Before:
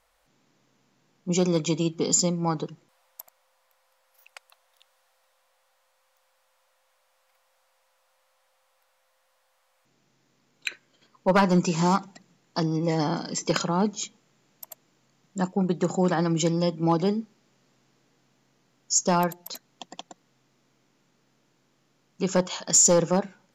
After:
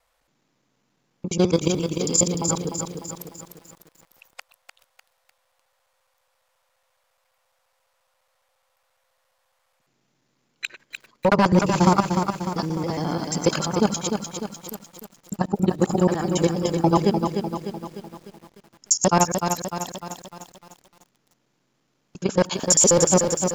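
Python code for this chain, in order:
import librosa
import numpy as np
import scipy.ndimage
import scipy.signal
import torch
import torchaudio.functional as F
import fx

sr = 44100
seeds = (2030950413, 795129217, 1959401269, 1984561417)

y = fx.local_reverse(x, sr, ms=69.0)
y = fx.level_steps(y, sr, step_db=11)
y = fx.echo_crushed(y, sr, ms=300, feedback_pct=55, bits=9, wet_db=-6.0)
y = y * 10.0 ** (6.5 / 20.0)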